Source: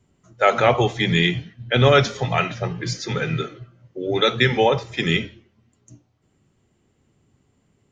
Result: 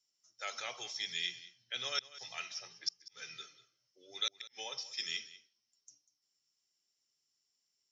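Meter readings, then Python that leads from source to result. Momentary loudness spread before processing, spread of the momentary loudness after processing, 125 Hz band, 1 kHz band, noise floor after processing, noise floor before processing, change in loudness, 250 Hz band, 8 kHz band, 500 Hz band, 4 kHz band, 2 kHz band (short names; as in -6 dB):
12 LU, 14 LU, under -40 dB, -26.5 dB, -83 dBFS, -66 dBFS, -19.5 dB, -40.0 dB, n/a, -33.5 dB, -12.5 dB, -20.5 dB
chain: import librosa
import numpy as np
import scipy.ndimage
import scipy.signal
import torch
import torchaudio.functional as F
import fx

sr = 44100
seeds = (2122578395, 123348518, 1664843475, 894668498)

y = fx.bandpass_q(x, sr, hz=5400.0, q=14.0)
y = fx.gate_flip(y, sr, shuts_db=-31.0, range_db=-39)
y = y + 10.0 ** (-17.5 / 20.0) * np.pad(y, (int(194 * sr / 1000.0), 0))[:len(y)]
y = y * 10.0 ** (10.5 / 20.0)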